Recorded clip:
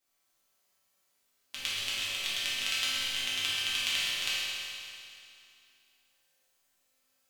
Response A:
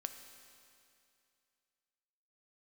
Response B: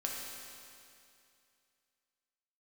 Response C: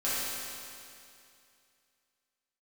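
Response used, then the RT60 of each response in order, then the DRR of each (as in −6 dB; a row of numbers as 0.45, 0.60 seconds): C; 2.5, 2.5, 2.5 seconds; 7.0, −2.5, −11.5 decibels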